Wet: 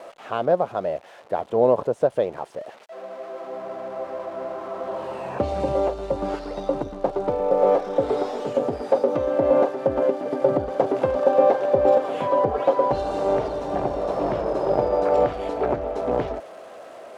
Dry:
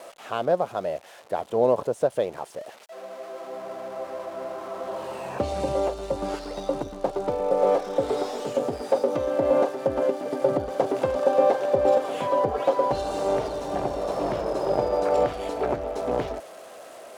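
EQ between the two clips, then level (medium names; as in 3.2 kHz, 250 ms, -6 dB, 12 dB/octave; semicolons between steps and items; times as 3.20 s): low-pass 2.2 kHz 6 dB/octave; +3.0 dB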